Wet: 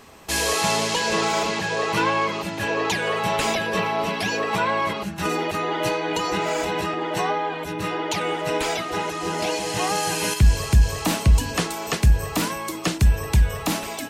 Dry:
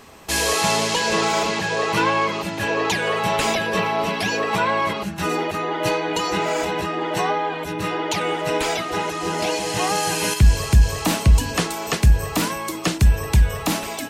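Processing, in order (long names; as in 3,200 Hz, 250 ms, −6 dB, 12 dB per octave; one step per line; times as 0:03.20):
0:05.25–0:06.94: multiband upward and downward compressor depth 70%
level −2 dB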